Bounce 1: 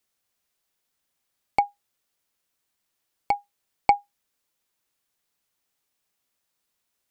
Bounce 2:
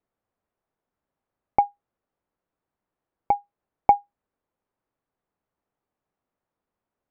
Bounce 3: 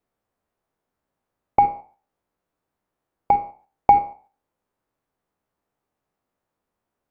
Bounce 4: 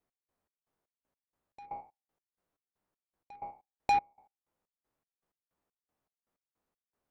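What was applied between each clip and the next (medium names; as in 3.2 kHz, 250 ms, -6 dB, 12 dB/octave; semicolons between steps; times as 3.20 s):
low-pass 1 kHz 12 dB/octave; trim +4 dB
spectral sustain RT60 0.38 s; in parallel at -2 dB: level held to a coarse grid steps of 23 dB
saturation -17.5 dBFS, distortion -7 dB; trance gate "x..xx..xx.." 158 bpm -24 dB; trim -5 dB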